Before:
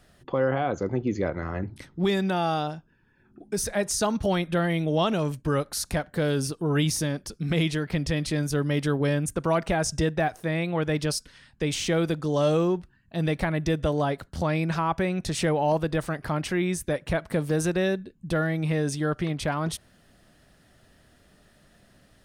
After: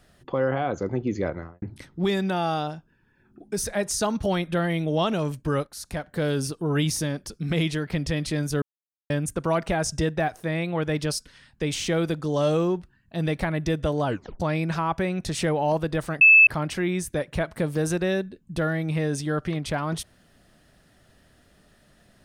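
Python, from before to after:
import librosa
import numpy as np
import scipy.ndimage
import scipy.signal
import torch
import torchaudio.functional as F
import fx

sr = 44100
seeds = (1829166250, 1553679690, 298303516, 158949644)

y = fx.studio_fade_out(x, sr, start_s=1.27, length_s=0.35)
y = fx.edit(y, sr, fx.fade_in_from(start_s=5.67, length_s=0.57, floor_db=-12.5),
    fx.silence(start_s=8.62, length_s=0.48),
    fx.tape_stop(start_s=14.06, length_s=0.34),
    fx.insert_tone(at_s=16.21, length_s=0.26, hz=2620.0, db=-9.5), tone=tone)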